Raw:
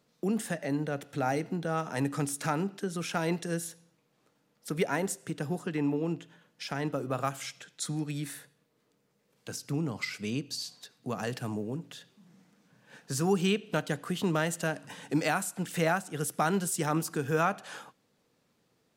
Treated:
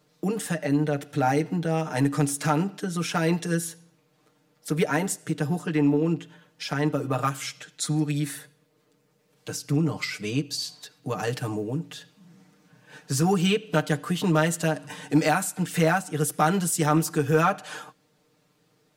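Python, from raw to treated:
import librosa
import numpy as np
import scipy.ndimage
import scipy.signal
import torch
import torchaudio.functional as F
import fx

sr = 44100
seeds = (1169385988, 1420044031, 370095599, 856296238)

p1 = x + 0.84 * np.pad(x, (int(6.6 * sr / 1000.0), 0))[:len(x)]
p2 = np.clip(p1, -10.0 ** (-19.0 / 20.0), 10.0 ** (-19.0 / 20.0))
y = p1 + (p2 * librosa.db_to_amplitude(-6.0))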